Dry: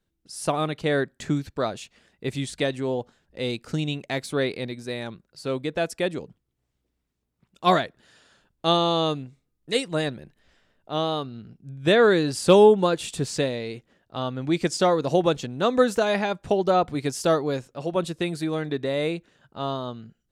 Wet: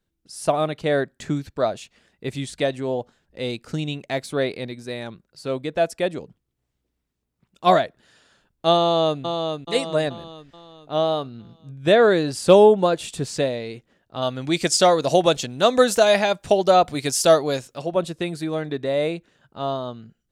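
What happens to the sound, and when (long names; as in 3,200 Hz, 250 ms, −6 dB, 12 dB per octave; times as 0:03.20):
0:08.81–0:09.21: delay throw 430 ms, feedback 50%, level −5 dB
0:14.22–0:17.82: high-shelf EQ 2,300 Hz +12 dB
whole clip: dynamic equaliser 640 Hz, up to +8 dB, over −37 dBFS, Q 3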